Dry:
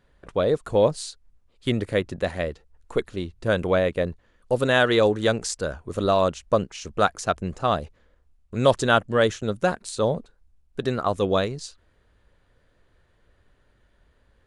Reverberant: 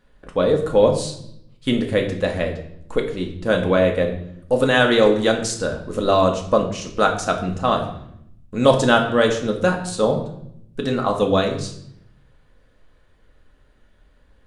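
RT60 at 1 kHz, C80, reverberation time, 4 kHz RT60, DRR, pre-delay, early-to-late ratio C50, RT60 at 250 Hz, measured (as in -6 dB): 0.65 s, 11.5 dB, 0.75 s, 0.65 s, 2.0 dB, 4 ms, 9.0 dB, 1.1 s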